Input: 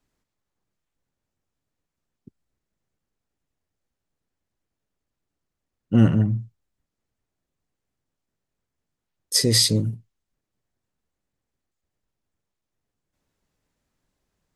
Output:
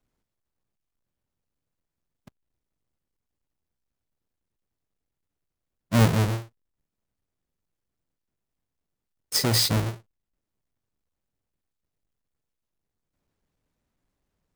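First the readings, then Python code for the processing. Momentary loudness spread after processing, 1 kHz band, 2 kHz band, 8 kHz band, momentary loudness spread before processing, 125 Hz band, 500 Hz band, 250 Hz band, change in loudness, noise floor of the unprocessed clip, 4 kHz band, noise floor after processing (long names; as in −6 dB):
10 LU, +10.0 dB, +3.5 dB, −5.0 dB, 10 LU, −2.5 dB, −1.0 dB, −5.5 dB, −3.0 dB, −84 dBFS, −4.0 dB, −85 dBFS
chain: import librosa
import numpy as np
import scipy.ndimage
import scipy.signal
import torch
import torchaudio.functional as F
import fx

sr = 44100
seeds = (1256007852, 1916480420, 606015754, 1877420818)

y = fx.halfwave_hold(x, sr)
y = F.gain(torch.from_numpy(y), -7.0).numpy()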